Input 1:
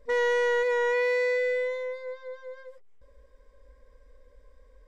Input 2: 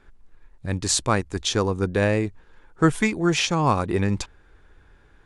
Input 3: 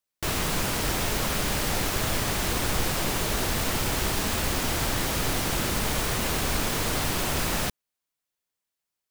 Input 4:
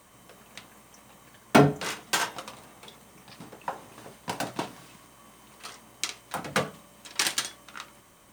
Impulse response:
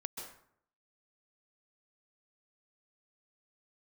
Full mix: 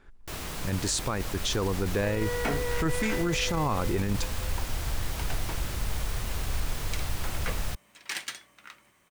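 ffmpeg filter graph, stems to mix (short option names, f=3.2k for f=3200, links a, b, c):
-filter_complex "[0:a]adelay=1950,volume=-8dB[a];[1:a]volume=-1.5dB[b];[2:a]asubboost=boost=5:cutoff=100,adelay=50,volume=-10dB[c];[3:a]equalizer=f=2.1k:w=1.5:g=8,acrusher=bits=4:mode=log:mix=0:aa=0.000001,adelay=900,volume=-10.5dB[d];[a][b][c][d]amix=inputs=4:normalize=0,alimiter=limit=-18.5dB:level=0:latency=1:release=20"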